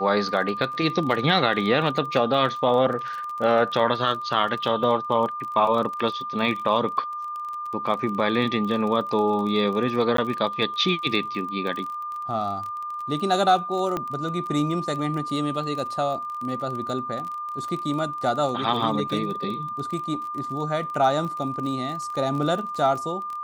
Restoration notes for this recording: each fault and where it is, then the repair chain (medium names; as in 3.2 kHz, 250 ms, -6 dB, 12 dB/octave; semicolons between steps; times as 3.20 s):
crackle 27 per s -30 dBFS
whine 1.2 kHz -29 dBFS
10.17–10.18 s: dropout 13 ms
13.97 s: pop -14 dBFS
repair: de-click; band-stop 1.2 kHz, Q 30; interpolate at 10.17 s, 13 ms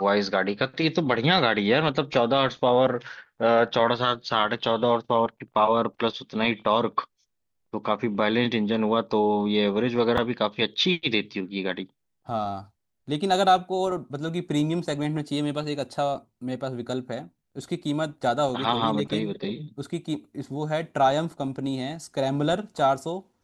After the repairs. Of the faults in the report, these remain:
nothing left